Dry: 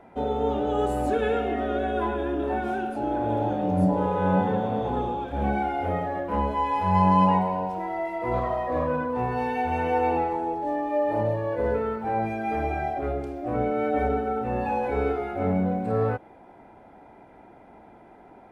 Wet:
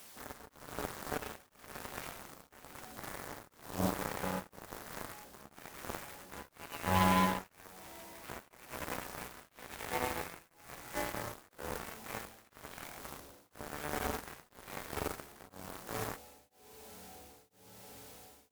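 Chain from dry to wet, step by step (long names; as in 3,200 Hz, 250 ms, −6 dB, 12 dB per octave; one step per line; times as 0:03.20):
bit-depth reduction 6 bits, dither triangular
flanger 0.14 Hz, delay 0.1 ms, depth 2.5 ms, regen −85%
feedback delay with all-pass diffusion 1,811 ms, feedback 69%, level −12 dB
harmonic generator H 7 −14 dB, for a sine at −12.5 dBFS
tremolo along a rectified sine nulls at 1 Hz
level −4 dB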